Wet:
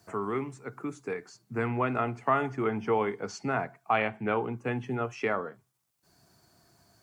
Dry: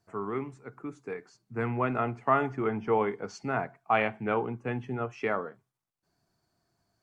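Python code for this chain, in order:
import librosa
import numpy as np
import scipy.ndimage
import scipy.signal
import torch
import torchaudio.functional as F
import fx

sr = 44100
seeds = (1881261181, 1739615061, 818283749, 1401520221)

y = scipy.signal.sosfilt(scipy.signal.butter(2, 43.0, 'highpass', fs=sr, output='sos'), x)
y = fx.high_shelf(y, sr, hz=4400.0, db=9.0)
y = fx.band_squash(y, sr, depth_pct=40)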